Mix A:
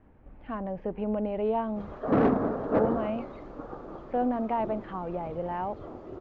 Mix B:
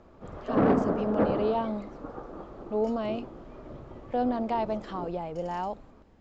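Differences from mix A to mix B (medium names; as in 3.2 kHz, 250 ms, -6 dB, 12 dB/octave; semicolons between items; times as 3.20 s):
speech: remove low-pass 2.5 kHz 24 dB/octave; background: entry -1.55 s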